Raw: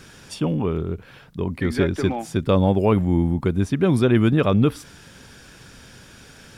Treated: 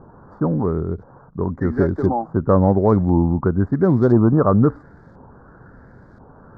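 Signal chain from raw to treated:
running median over 15 samples
Butterworth band-reject 2,700 Hz, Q 0.64
auto-filter low-pass saw up 0.97 Hz 880–3,000 Hz
level +2.5 dB

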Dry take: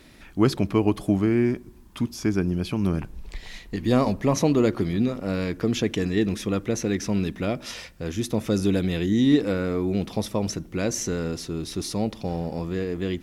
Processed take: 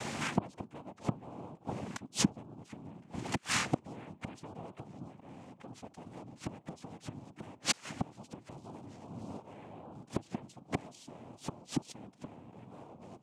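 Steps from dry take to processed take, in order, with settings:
high-shelf EQ 5,200 Hz −6 dB
downward compressor 2 to 1, threshold −33 dBFS, peak gain reduction 10.5 dB
gate with flip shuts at −28 dBFS, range −32 dB
cochlear-implant simulation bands 4
wow of a warped record 45 rpm, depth 100 cents
level +14 dB

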